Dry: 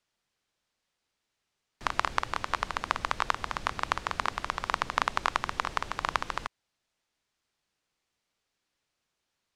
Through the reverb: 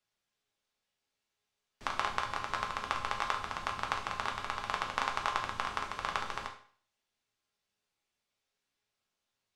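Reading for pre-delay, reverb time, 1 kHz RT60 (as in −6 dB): 4 ms, 0.50 s, 0.50 s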